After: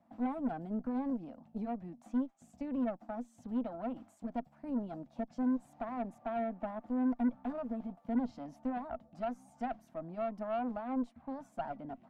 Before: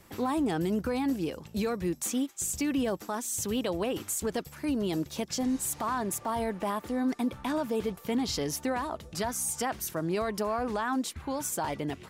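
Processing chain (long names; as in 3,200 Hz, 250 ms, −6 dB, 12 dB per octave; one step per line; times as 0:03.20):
pair of resonant band-passes 410 Hz, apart 1.5 octaves
harmonic generator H 4 −23 dB, 8 −26 dB, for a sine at −22.5 dBFS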